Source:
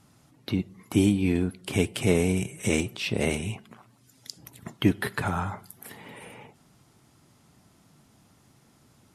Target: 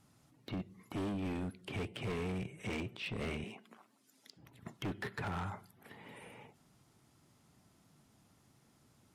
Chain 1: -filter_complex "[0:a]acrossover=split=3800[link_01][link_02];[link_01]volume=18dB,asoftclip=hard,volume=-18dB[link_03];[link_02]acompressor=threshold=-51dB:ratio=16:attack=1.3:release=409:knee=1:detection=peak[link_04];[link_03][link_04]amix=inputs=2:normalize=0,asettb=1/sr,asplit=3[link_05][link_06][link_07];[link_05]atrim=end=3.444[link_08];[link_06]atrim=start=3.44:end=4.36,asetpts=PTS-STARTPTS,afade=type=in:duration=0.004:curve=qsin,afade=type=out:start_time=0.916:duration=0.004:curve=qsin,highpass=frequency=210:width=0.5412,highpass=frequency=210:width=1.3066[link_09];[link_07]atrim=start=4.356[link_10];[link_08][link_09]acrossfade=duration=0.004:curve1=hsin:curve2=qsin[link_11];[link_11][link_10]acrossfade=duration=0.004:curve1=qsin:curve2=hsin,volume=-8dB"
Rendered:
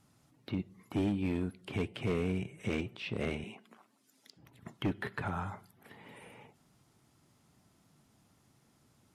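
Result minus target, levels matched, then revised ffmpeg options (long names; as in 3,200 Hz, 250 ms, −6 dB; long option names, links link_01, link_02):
gain into a clipping stage and back: distortion −8 dB
-filter_complex "[0:a]acrossover=split=3800[link_01][link_02];[link_01]volume=27dB,asoftclip=hard,volume=-27dB[link_03];[link_02]acompressor=threshold=-51dB:ratio=16:attack=1.3:release=409:knee=1:detection=peak[link_04];[link_03][link_04]amix=inputs=2:normalize=0,asettb=1/sr,asplit=3[link_05][link_06][link_07];[link_05]atrim=end=3.444[link_08];[link_06]atrim=start=3.44:end=4.36,asetpts=PTS-STARTPTS,afade=type=in:duration=0.004:curve=qsin,afade=type=out:start_time=0.916:duration=0.004:curve=qsin,highpass=frequency=210:width=0.5412,highpass=frequency=210:width=1.3066[link_09];[link_07]atrim=start=4.356[link_10];[link_08][link_09]acrossfade=duration=0.004:curve1=hsin:curve2=qsin[link_11];[link_11][link_10]acrossfade=duration=0.004:curve1=qsin:curve2=hsin,volume=-8dB"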